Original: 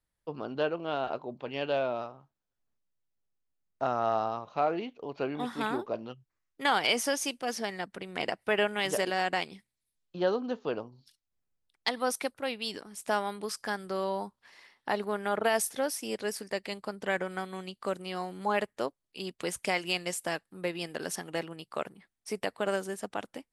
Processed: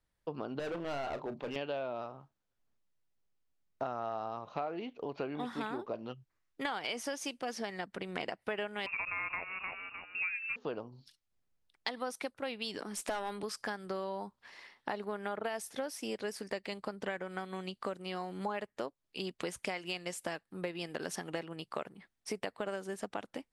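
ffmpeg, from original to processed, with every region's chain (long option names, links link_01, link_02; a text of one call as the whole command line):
ffmpeg -i in.wav -filter_complex "[0:a]asettb=1/sr,asplit=3[link_01][link_02][link_03];[link_01]atrim=end=0.594[link_04];[link_02]atrim=start=0.59:end=1.56,asetpts=PTS-STARTPTS,afade=type=in:duration=0.004:curve=qsin,afade=type=out:start_time=0.966:duration=0.004:curve=qsin,asoftclip=type=hard:threshold=-34.5dB,asplit=2[link_05][link_06];[link_06]adelay=35,volume=-12dB[link_07];[link_05][link_07]amix=inputs=2:normalize=0,atrim=end_sample=42777[link_08];[link_03]atrim=start=1.556[link_09];[link_04][link_08]acrossfade=duration=0.004:curve1=hsin:curve2=qsin[link_10];[link_10][link_09]acrossfade=duration=0.004:curve1=qsin:curve2=hsin,asettb=1/sr,asplit=3[link_11][link_12][link_13];[link_11]atrim=end=8.864[link_14];[link_12]atrim=start=8.86:end=10.56,asetpts=PTS-STARTPTS,afade=type=in:duration=0.004:curve=qsin,afade=type=out:start_time=1.696:duration=0.004:curve=qsin,asplit=5[link_15][link_16][link_17][link_18][link_19];[link_16]adelay=305,afreqshift=-70,volume=-11.5dB[link_20];[link_17]adelay=610,afreqshift=-140,volume=-19.2dB[link_21];[link_18]adelay=915,afreqshift=-210,volume=-27dB[link_22];[link_19]adelay=1220,afreqshift=-280,volume=-34.7dB[link_23];[link_15][link_20][link_21][link_22][link_23]amix=inputs=5:normalize=0,atrim=end_sample=74970,lowpass=frequency=2500:width_type=q:width=0.5098,lowpass=frequency=2500:width_type=q:width=0.6013,lowpass=frequency=2500:width_type=q:width=0.9,lowpass=frequency=2500:width_type=q:width=2.563,afreqshift=-2900[link_24];[link_13]atrim=start=10.556[link_25];[link_14][link_24]acrossfade=duration=0.004:curve1=hsin:curve2=qsin[link_26];[link_26][link_25]acrossfade=duration=0.004:curve1=qsin:curve2=hsin,asettb=1/sr,asplit=3[link_27][link_28][link_29];[link_27]atrim=end=12.794[link_30];[link_28]atrim=start=12.79:end=13.43,asetpts=PTS-STARTPTS,afade=type=in:duration=0.004:curve=qsin,afade=type=out:start_time=0.636:duration=0.004:curve=qsin,highpass=frequency=190:width=0.5412,highpass=frequency=190:width=1.3066,acontrast=45,aeval=exprs='(tanh(12.6*val(0)+0.15)-tanh(0.15))/12.6':channel_layout=same[link_31];[link_29]atrim=start=13.426[link_32];[link_30][link_31]acrossfade=duration=0.004:curve1=hsin:curve2=qsin[link_33];[link_33][link_32]acrossfade=duration=0.004:curve1=qsin:curve2=hsin,highshelf=frequency=9000:gain=-11,acompressor=threshold=-38dB:ratio=5,volume=3dB" out.wav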